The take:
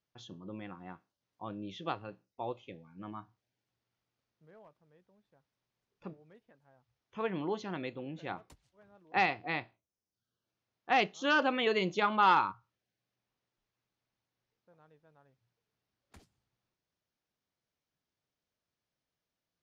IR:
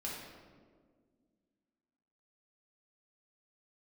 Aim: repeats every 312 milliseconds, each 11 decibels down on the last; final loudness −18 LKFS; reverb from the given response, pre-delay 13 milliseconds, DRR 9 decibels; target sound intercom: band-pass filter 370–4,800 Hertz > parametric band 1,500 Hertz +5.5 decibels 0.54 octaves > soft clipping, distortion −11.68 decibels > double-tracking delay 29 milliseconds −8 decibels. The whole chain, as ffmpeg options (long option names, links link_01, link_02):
-filter_complex "[0:a]aecho=1:1:312|624|936:0.282|0.0789|0.0221,asplit=2[link_01][link_02];[1:a]atrim=start_sample=2205,adelay=13[link_03];[link_02][link_03]afir=irnorm=-1:irlink=0,volume=-10dB[link_04];[link_01][link_04]amix=inputs=2:normalize=0,highpass=370,lowpass=4800,equalizer=frequency=1500:width_type=o:width=0.54:gain=5.5,asoftclip=threshold=-21dB,asplit=2[link_05][link_06];[link_06]adelay=29,volume=-8dB[link_07];[link_05][link_07]amix=inputs=2:normalize=0,volume=14.5dB"